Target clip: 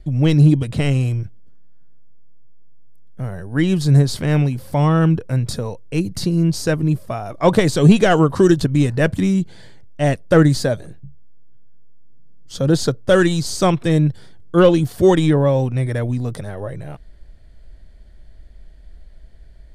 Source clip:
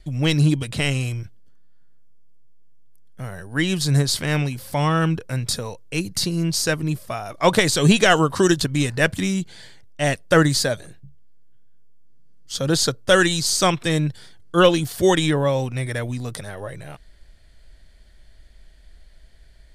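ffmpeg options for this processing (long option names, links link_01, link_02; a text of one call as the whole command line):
ffmpeg -i in.wav -af "acontrast=33,tiltshelf=frequency=1100:gain=6.5,volume=-5dB" out.wav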